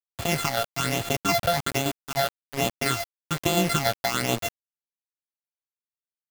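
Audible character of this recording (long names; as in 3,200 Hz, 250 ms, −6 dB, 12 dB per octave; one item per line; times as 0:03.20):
a buzz of ramps at a fixed pitch in blocks of 64 samples
phaser sweep stages 8, 1.2 Hz, lowest notch 290–1,700 Hz
tremolo saw down 7 Hz, depth 40%
a quantiser's noise floor 6 bits, dither none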